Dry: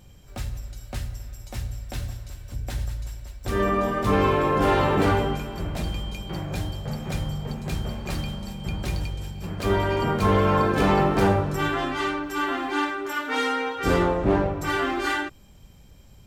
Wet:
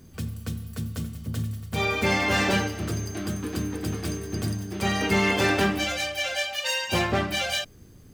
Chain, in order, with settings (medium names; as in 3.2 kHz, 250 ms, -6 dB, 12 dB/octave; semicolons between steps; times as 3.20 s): peaking EQ 460 Hz -8 dB 1.1 oct; speed mistake 7.5 ips tape played at 15 ips